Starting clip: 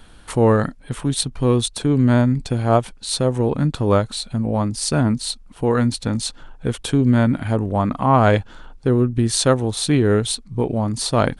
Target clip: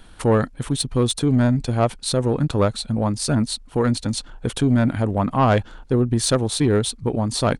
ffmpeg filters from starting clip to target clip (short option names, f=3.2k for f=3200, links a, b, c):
-af "atempo=1.5,acontrast=65,volume=-6.5dB"